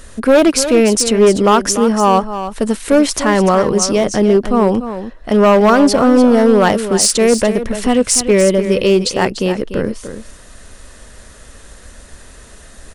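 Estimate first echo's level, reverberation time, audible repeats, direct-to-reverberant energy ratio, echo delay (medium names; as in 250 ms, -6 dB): -11.0 dB, no reverb, 1, no reverb, 295 ms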